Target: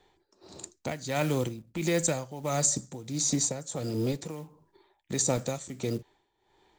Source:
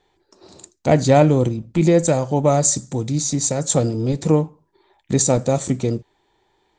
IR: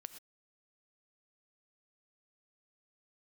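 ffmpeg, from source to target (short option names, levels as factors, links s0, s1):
-filter_complex "[0:a]acrusher=bits=8:mode=log:mix=0:aa=0.000001,acrossover=split=270|1300[s0][s1][s2];[s0]acompressor=threshold=0.0251:ratio=4[s3];[s1]acompressor=threshold=0.0355:ratio=4[s4];[s2]acompressor=threshold=0.0631:ratio=4[s5];[s3][s4][s5]amix=inputs=3:normalize=0,tremolo=f=1.5:d=0.79"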